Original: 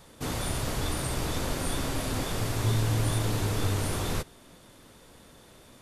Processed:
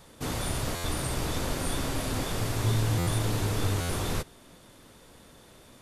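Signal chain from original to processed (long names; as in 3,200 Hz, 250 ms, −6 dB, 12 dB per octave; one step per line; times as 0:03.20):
buffer that repeats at 0:00.75/0:02.98/0:03.80, samples 512, times 7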